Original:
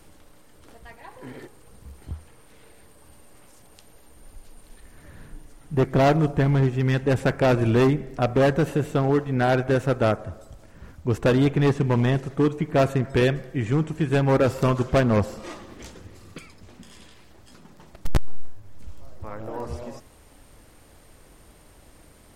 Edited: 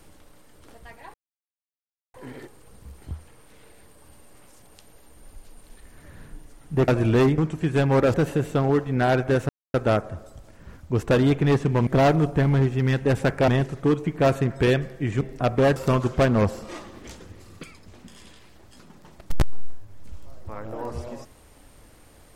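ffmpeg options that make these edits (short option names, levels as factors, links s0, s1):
-filter_complex "[0:a]asplit=10[s0][s1][s2][s3][s4][s5][s6][s7][s8][s9];[s0]atrim=end=1.14,asetpts=PTS-STARTPTS,afade=t=out:st=1.136:d=0.004:c=hsin,apad=pad_dur=1[s10];[s1]atrim=start=1.14:end=5.882,asetpts=PTS-STARTPTS,afade=t=in:d=0.004:c=hsin[s11];[s2]atrim=start=7.488:end=7.992[s12];[s3]atrim=start=13.748:end=14.512[s13];[s4]atrim=start=8.538:end=9.89,asetpts=PTS-STARTPTS,afade=t=out:st=1.348:d=0.004:c=hsin,apad=pad_dur=0.25[s14];[s5]atrim=start=9.89:end=12.022,asetpts=PTS-STARTPTS,afade=t=in:d=0.004:c=hsin[s15];[s6]atrim=start=5.878:end=7.492[s16];[s7]atrim=start=12.018:end=13.752[s17];[s8]atrim=start=7.988:end=8.542[s18];[s9]atrim=start=14.508[s19];[s10][s11]concat=n=2:v=0:a=1[s20];[s20][s12]acrossfade=d=0.004:c1=hsin:c2=hsin[s21];[s21][s13]acrossfade=d=0.004:c1=hsin:c2=hsin[s22];[s14][s15]concat=n=2:v=0:a=1[s23];[s22][s23]acrossfade=d=0.004:c1=hsin:c2=hsin[s24];[s24][s16]acrossfade=d=0.004:c1=hsin:c2=hsin[s25];[s25][s17]acrossfade=d=0.004:c1=hsin:c2=hsin[s26];[s26][s18]acrossfade=d=0.004:c1=hsin:c2=hsin[s27];[s27][s19]acrossfade=d=0.004:c1=hsin:c2=hsin"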